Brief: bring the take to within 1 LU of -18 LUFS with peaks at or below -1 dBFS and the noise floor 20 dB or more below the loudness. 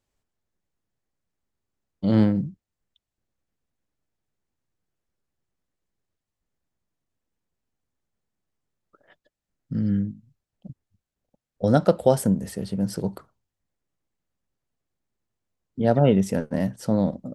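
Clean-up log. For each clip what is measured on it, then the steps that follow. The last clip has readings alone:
loudness -23.5 LUFS; peak level -3.5 dBFS; loudness target -18.0 LUFS
-> trim +5.5 dB; peak limiter -1 dBFS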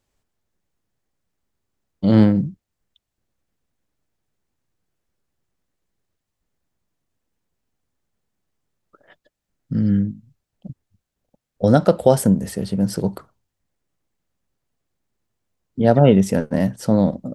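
loudness -18.0 LUFS; peak level -1.0 dBFS; noise floor -82 dBFS

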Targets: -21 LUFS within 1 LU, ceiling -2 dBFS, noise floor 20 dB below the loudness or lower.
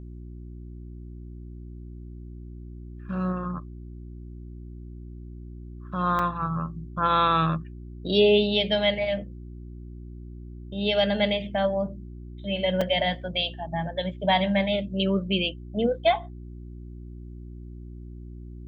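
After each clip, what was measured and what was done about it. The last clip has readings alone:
dropouts 2; longest dropout 4.4 ms; hum 60 Hz; highest harmonic 360 Hz; hum level -37 dBFS; loudness -25.5 LUFS; peak level -8.0 dBFS; loudness target -21.0 LUFS
-> interpolate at 6.19/12.81 s, 4.4 ms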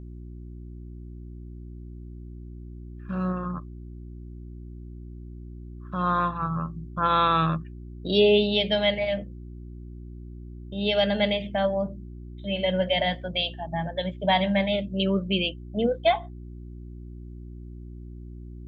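dropouts 0; hum 60 Hz; highest harmonic 360 Hz; hum level -38 dBFS
-> de-hum 60 Hz, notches 6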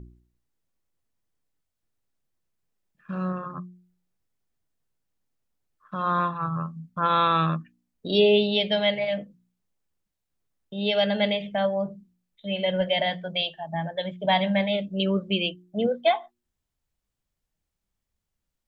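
hum not found; loudness -25.5 LUFS; peak level -7.5 dBFS; loudness target -21.0 LUFS
-> trim +4.5 dB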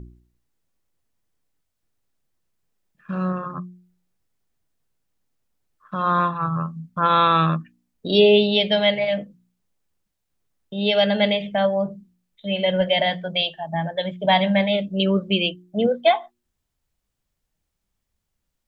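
loudness -21.0 LUFS; peak level -3.0 dBFS; noise floor -78 dBFS

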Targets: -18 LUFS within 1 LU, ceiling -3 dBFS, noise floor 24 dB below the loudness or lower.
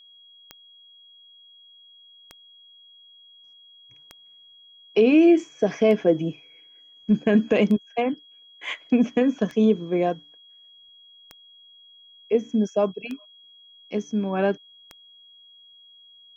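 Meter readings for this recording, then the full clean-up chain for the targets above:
clicks found 9; steady tone 3.3 kHz; tone level -49 dBFS; loudness -22.5 LUFS; peak level -8.0 dBFS; loudness target -18.0 LUFS
-> de-click; band-stop 3.3 kHz, Q 30; trim +4.5 dB

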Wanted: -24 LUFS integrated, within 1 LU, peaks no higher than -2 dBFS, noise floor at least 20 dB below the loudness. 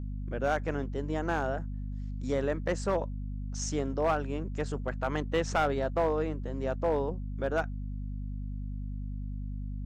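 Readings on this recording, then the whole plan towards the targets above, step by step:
clipped samples 0.4%; clipping level -20.5 dBFS; hum 50 Hz; highest harmonic 250 Hz; hum level -34 dBFS; loudness -32.5 LUFS; peak level -20.5 dBFS; loudness target -24.0 LUFS
-> clip repair -20.5 dBFS; hum notches 50/100/150/200/250 Hz; trim +8.5 dB

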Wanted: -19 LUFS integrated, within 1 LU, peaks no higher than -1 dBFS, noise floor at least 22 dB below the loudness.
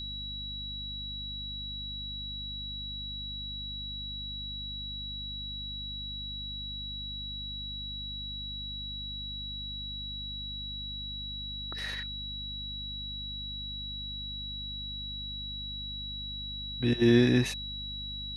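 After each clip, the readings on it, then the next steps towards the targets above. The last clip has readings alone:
hum 50 Hz; highest harmonic 250 Hz; hum level -41 dBFS; steady tone 3.9 kHz; tone level -37 dBFS; loudness -34.0 LUFS; peak level -11.5 dBFS; loudness target -19.0 LUFS
-> de-hum 50 Hz, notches 5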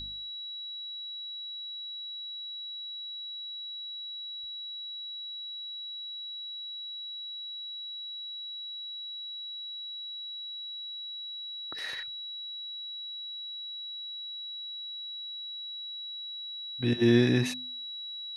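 hum not found; steady tone 3.9 kHz; tone level -37 dBFS
-> band-stop 3.9 kHz, Q 30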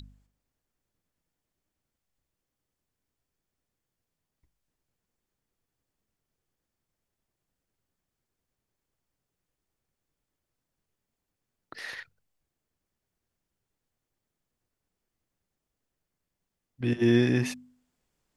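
steady tone not found; loudness -26.0 LUFS; peak level -11.5 dBFS; loudness target -19.0 LUFS
-> trim +7 dB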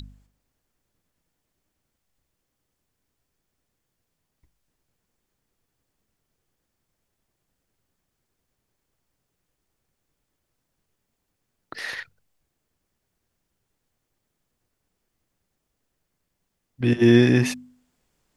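loudness -19.0 LUFS; peak level -4.5 dBFS; noise floor -79 dBFS

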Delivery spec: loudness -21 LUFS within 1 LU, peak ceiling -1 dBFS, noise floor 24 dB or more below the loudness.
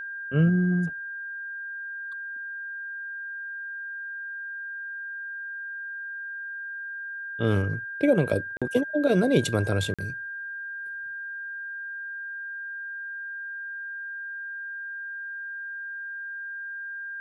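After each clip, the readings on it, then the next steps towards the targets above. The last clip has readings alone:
dropouts 2; longest dropout 46 ms; steady tone 1.6 kHz; tone level -33 dBFS; loudness -30.0 LUFS; peak level -9.5 dBFS; loudness target -21.0 LUFS
-> interpolate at 8.57/9.94 s, 46 ms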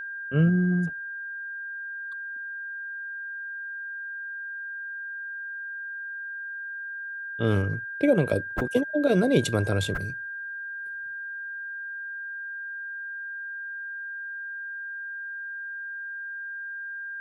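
dropouts 0; steady tone 1.6 kHz; tone level -33 dBFS
-> band-stop 1.6 kHz, Q 30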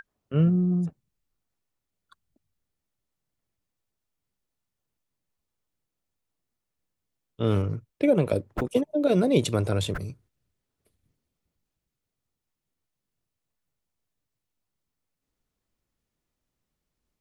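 steady tone not found; loudness -25.5 LUFS; peak level -10.0 dBFS; loudness target -21.0 LUFS
-> trim +4.5 dB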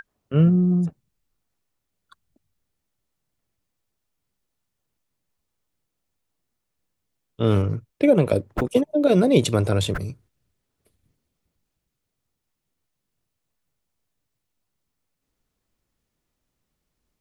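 loudness -21.0 LUFS; peak level -5.5 dBFS; noise floor -80 dBFS

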